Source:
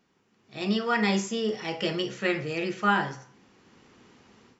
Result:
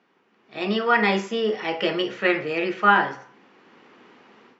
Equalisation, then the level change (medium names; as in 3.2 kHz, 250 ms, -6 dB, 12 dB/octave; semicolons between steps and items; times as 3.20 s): band-pass 240–2800 Hz; bass shelf 350 Hz -4.5 dB; +8.0 dB